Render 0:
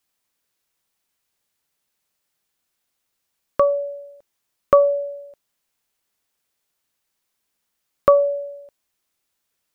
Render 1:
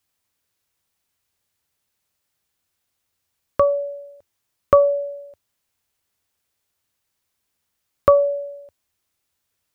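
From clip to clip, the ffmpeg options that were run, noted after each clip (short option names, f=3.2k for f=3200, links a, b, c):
-af "equalizer=f=86:t=o:w=0.82:g=11.5"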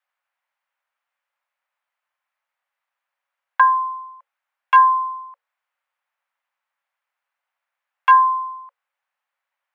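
-filter_complex "[0:a]aeval=exprs='0.422*(abs(mod(val(0)/0.422+3,4)-2)-1)':c=same,acrossover=split=250 2000:gain=0.2 1 0.0708[a][b][c];[a][b][c]amix=inputs=3:normalize=0,afreqshift=470,volume=3.5dB"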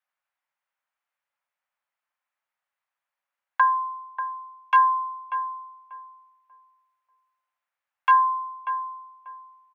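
-filter_complex "[0:a]asplit=2[a][b];[b]adelay=589,lowpass=f=810:p=1,volume=-6.5dB,asplit=2[c][d];[d]adelay=589,lowpass=f=810:p=1,volume=0.33,asplit=2[e][f];[f]adelay=589,lowpass=f=810:p=1,volume=0.33,asplit=2[g][h];[h]adelay=589,lowpass=f=810:p=1,volume=0.33[i];[a][c][e][g][i]amix=inputs=5:normalize=0,volume=-5.5dB"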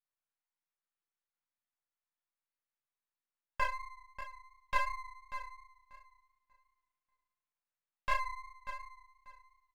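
-filter_complex "[0:a]asplit=2[a][b];[b]adelay=36,volume=-6.5dB[c];[a][c]amix=inputs=2:normalize=0,flanger=delay=16.5:depth=3.6:speed=2.8,aeval=exprs='max(val(0),0)':c=same,volume=-6.5dB"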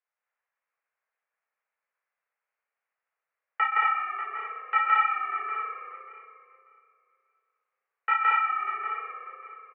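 -filter_complex "[0:a]asplit=2[a][b];[b]asplit=8[c][d][e][f][g][h][i][j];[c]adelay=122,afreqshift=-31,volume=-10.5dB[k];[d]adelay=244,afreqshift=-62,volume=-14.2dB[l];[e]adelay=366,afreqshift=-93,volume=-18dB[m];[f]adelay=488,afreqshift=-124,volume=-21.7dB[n];[g]adelay=610,afreqshift=-155,volume=-25.5dB[o];[h]adelay=732,afreqshift=-186,volume=-29.2dB[p];[i]adelay=854,afreqshift=-217,volume=-33dB[q];[j]adelay=976,afreqshift=-248,volume=-36.7dB[r];[k][l][m][n][o][p][q][r]amix=inputs=8:normalize=0[s];[a][s]amix=inputs=2:normalize=0,highpass=f=170:t=q:w=0.5412,highpass=f=170:t=q:w=1.307,lowpass=f=2.1k:t=q:w=0.5176,lowpass=f=2.1k:t=q:w=0.7071,lowpass=f=2.1k:t=q:w=1.932,afreqshift=280,asplit=2[t][u];[u]aecho=0:1:166.2|227.4:1|0.891[v];[t][v]amix=inputs=2:normalize=0,volume=8.5dB"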